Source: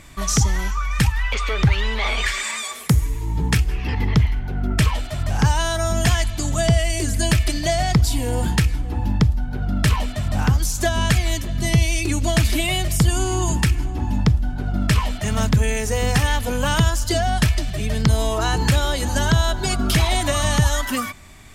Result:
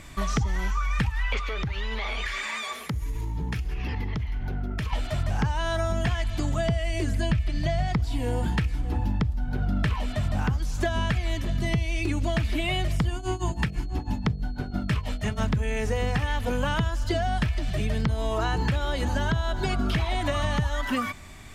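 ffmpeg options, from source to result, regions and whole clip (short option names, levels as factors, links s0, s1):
-filter_complex "[0:a]asettb=1/sr,asplit=3[s0][s1][s2];[s0]atrim=end=1.394[s3];[s1]atrim=start=1.39:end=4.93,asetpts=PTS-STARTPTS,afade=t=in:d=0.004:c=qsin,afade=t=out:st=3.536:d=0.004:c=qsin,bandreject=f=8000:w=6.1,acompressor=threshold=0.0562:ratio=10:attack=3.2:release=140:knee=1:detection=peak[s4];[s2]atrim=start=4.926[s5];[s3][s4]acrossfade=d=0.004:c1=hsin:c2=qsin[s6];[s6][s5]acrossfade=d=0.004:c1=qsin:c2=hsin,asettb=1/sr,asplit=3[s7][s8][s9];[s7]atrim=end=7.304[s10];[s8]atrim=start=7.3:end=7.88,asetpts=PTS-STARTPTS,afade=t=in:d=0.004:c=qsin,afade=t=out:st=0.576:d=0.004:c=qsin,acrossover=split=5700[s11][s12];[s12]acompressor=threshold=0.0126:ratio=4:attack=1:release=60[s13];[s11][s13]amix=inputs=2:normalize=0,lowshelf=f=240:t=q:w=1.5:g=6[s14];[s9]atrim=start=7.876[s15];[s10][s14]acrossfade=d=0.004:c1=hsin:c2=qsin[s16];[s16][s15]acrossfade=d=0.004:c1=qsin:c2=hsin,asettb=1/sr,asplit=3[s17][s18][s19];[s17]atrim=end=13.144[s20];[s18]atrim=start=13.14:end=15.44,asetpts=PTS-STARTPTS,afade=t=in:d=0.004:c=qsin,afade=t=out:st=2.296:d=0.004:c=qsin,tremolo=f=6.1:d=0.95,bandreject=f=48.39:t=h:w=4,bandreject=f=96.78:t=h:w=4,bandreject=f=145.17:t=h:w=4,bandreject=f=193.56:t=h:w=4,bandreject=f=241.95:t=h:w=4,bandreject=f=290.34:t=h:w=4,bandreject=f=338.73:t=h:w=4,bandreject=f=387.12:t=h:w=4,bandreject=f=435.51:t=h:w=4,bandreject=f=483.9:t=h:w=4,bandreject=f=532.29:t=h:w=4,bandreject=f=580.68:t=h:w=4,bandreject=f=629.07:t=h:w=4,bandreject=f=677.46:t=h:w=4,bandreject=f=725.85:t=h:w=4,bandreject=f=774.24:t=h:w=4,aeval=exprs='val(0)+0.002*sin(2*PI*4300*n/s)':c=same[s21];[s19]atrim=start=15.436[s22];[s20][s21]acrossfade=d=0.004:c1=hsin:c2=qsin[s23];[s23][s22]acrossfade=d=0.004:c1=qsin:c2=hsin,acrossover=split=3700[s24][s25];[s25]acompressor=threshold=0.00891:ratio=4:attack=1:release=60[s26];[s24][s26]amix=inputs=2:normalize=0,highshelf=f=7200:g=-4.5,acompressor=threshold=0.0794:ratio=6"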